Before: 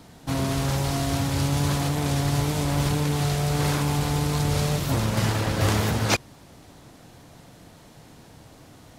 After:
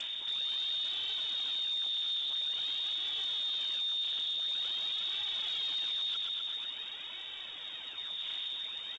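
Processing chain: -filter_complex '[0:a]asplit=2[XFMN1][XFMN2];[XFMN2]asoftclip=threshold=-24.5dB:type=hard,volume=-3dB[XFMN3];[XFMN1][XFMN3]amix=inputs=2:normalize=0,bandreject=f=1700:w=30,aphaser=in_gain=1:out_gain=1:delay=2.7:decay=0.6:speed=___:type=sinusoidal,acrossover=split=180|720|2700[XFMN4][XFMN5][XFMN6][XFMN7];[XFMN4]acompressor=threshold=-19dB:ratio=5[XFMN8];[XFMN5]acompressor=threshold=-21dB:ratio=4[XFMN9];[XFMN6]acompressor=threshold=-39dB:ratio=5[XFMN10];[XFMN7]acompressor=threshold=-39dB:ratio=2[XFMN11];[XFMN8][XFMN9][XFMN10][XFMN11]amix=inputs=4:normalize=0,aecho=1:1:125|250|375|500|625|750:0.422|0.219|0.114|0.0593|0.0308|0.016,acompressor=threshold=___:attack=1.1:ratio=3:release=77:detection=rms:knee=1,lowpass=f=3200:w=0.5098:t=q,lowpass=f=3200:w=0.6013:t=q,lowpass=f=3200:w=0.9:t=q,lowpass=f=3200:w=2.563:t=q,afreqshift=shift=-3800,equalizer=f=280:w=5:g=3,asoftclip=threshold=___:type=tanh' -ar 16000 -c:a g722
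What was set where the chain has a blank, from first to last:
0.48, -31dB, -30.5dB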